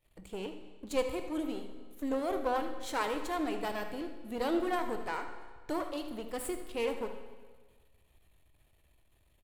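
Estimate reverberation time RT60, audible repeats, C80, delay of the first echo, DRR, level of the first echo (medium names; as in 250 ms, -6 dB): 1.5 s, 1, 10.0 dB, 78 ms, 6.0 dB, -13.0 dB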